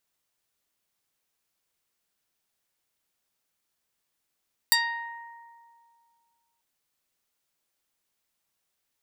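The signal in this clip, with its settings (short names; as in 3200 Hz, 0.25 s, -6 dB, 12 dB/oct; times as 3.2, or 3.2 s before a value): plucked string A#5, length 1.89 s, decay 2.24 s, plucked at 0.3, medium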